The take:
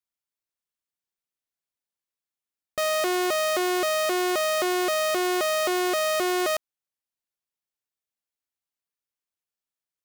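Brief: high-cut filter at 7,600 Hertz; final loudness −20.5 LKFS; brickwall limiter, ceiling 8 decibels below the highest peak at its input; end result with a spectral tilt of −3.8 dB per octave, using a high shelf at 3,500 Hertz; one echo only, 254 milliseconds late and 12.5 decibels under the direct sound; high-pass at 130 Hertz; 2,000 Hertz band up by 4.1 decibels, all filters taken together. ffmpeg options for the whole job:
ffmpeg -i in.wav -af "highpass=130,lowpass=7600,equalizer=frequency=2000:width_type=o:gain=3,highshelf=frequency=3500:gain=7,alimiter=limit=-19dB:level=0:latency=1,aecho=1:1:254:0.237,volume=9dB" out.wav

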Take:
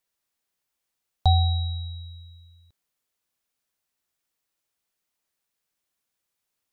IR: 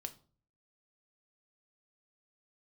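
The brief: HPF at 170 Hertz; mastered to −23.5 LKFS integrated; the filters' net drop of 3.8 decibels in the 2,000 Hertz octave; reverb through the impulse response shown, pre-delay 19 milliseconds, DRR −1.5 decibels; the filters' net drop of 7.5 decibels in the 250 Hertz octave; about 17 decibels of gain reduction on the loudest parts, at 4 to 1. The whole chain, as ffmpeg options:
-filter_complex "[0:a]highpass=170,equalizer=frequency=250:width_type=o:gain=-6,equalizer=frequency=2000:width_type=o:gain=-5.5,acompressor=threshold=-42dB:ratio=4,asplit=2[link_01][link_02];[1:a]atrim=start_sample=2205,adelay=19[link_03];[link_02][link_03]afir=irnorm=-1:irlink=0,volume=4.5dB[link_04];[link_01][link_04]amix=inputs=2:normalize=0,volume=16dB"

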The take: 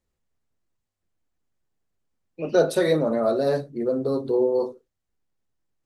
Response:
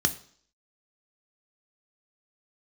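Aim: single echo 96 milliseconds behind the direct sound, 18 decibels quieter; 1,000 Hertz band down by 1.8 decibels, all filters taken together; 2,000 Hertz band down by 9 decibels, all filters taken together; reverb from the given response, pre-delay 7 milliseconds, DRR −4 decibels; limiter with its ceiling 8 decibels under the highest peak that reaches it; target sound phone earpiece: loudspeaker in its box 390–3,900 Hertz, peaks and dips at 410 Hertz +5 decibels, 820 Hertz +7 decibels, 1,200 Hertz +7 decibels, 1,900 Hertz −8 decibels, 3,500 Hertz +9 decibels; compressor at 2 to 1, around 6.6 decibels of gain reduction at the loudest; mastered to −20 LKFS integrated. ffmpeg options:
-filter_complex "[0:a]equalizer=frequency=1000:width_type=o:gain=-8,equalizer=frequency=2000:width_type=o:gain=-7.5,acompressor=threshold=-27dB:ratio=2,alimiter=limit=-24dB:level=0:latency=1,aecho=1:1:96:0.126,asplit=2[link_01][link_02];[1:a]atrim=start_sample=2205,adelay=7[link_03];[link_02][link_03]afir=irnorm=-1:irlink=0,volume=-5dB[link_04];[link_01][link_04]amix=inputs=2:normalize=0,highpass=390,equalizer=frequency=410:width_type=q:width=4:gain=5,equalizer=frequency=820:width_type=q:width=4:gain=7,equalizer=frequency=1200:width_type=q:width=4:gain=7,equalizer=frequency=1900:width_type=q:width=4:gain=-8,equalizer=frequency=3500:width_type=q:width=4:gain=9,lowpass=frequency=3900:width=0.5412,lowpass=frequency=3900:width=1.3066,volume=5.5dB"

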